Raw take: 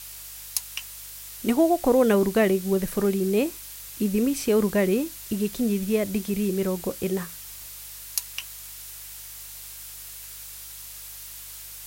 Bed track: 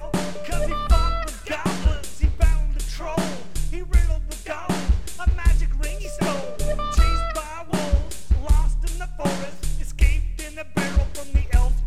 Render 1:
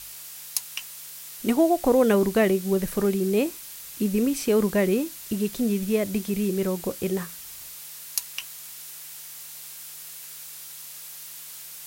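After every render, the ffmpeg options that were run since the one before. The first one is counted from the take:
-af "bandreject=f=50:t=h:w=4,bandreject=f=100:t=h:w=4"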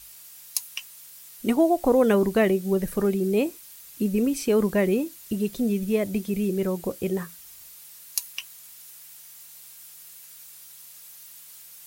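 -af "afftdn=nr=8:nf=-41"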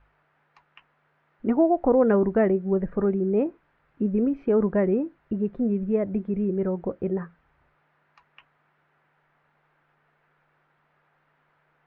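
-af "lowpass=f=1600:w=0.5412,lowpass=f=1600:w=1.3066,bandreject=f=1100:w=19"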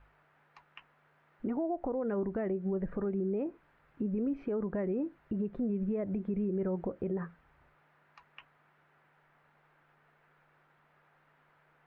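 -af "acompressor=threshold=0.0447:ratio=4,alimiter=level_in=1.26:limit=0.0631:level=0:latency=1:release=70,volume=0.794"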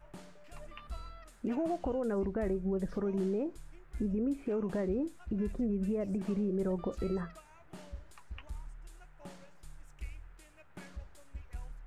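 -filter_complex "[1:a]volume=0.0501[s0];[0:a][s0]amix=inputs=2:normalize=0"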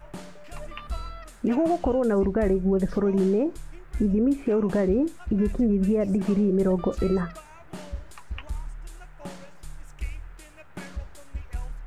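-af "volume=3.35"

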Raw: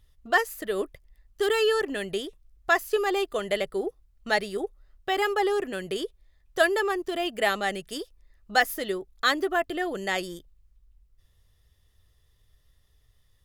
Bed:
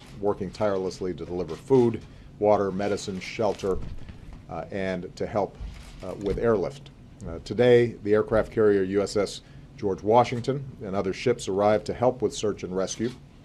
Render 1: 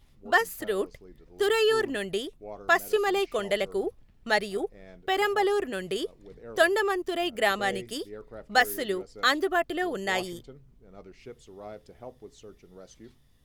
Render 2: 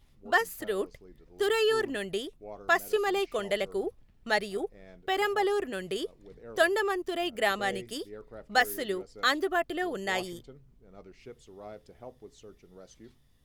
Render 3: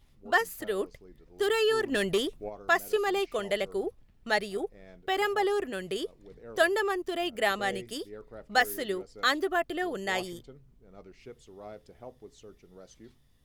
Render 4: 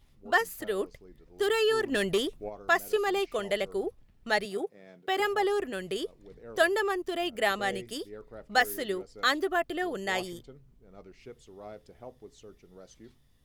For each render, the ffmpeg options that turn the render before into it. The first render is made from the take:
-filter_complex "[1:a]volume=0.0891[s0];[0:a][s0]amix=inputs=2:normalize=0"
-af "volume=0.75"
-filter_complex "[0:a]asplit=3[s0][s1][s2];[s0]afade=t=out:st=1.91:d=0.02[s3];[s1]aeval=exprs='0.0944*sin(PI/2*1.58*val(0)/0.0944)':c=same,afade=t=in:st=1.91:d=0.02,afade=t=out:st=2.48:d=0.02[s4];[s2]afade=t=in:st=2.48:d=0.02[s5];[s3][s4][s5]amix=inputs=3:normalize=0"
-filter_complex "[0:a]asettb=1/sr,asplit=3[s0][s1][s2];[s0]atrim=end=4.454[s3];[s1]atrim=start=4.45:end=5.2,asetpts=PTS-STARTPTS,afade=t=in:d=0.004:c=qsin,afade=t=out:st=0.746:d=0.004:c=qsin,highpass=f=140:w=0.5412,highpass=f=140:w=1.3066[s4];[s2]atrim=start=5.196[s5];[s3][s4]acrossfade=d=0.004:c1=hsin:c2=qsin[s6];[s6][s5]acrossfade=d=0.004:c1=qsin:c2=hsin"

